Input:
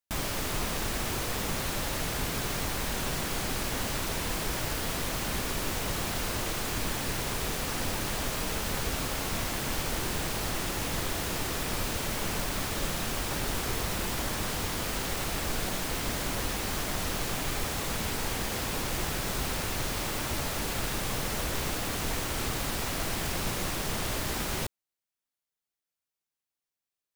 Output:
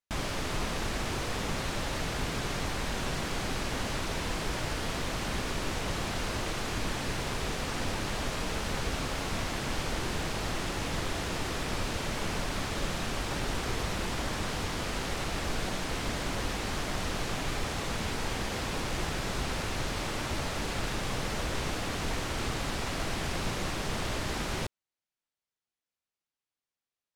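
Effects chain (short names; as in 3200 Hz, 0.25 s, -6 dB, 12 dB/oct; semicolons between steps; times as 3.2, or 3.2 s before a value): air absorption 56 m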